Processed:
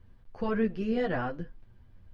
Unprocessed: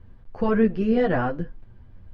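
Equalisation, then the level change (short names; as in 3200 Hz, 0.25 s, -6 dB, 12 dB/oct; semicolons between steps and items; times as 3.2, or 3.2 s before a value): high shelf 2500 Hz +8.5 dB; -8.5 dB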